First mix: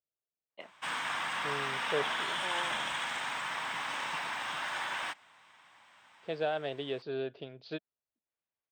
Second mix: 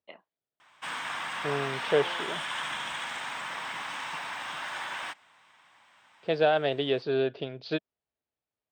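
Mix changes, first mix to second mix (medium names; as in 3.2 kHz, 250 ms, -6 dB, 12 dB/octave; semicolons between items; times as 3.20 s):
first voice: entry -0.50 s; second voice +9.0 dB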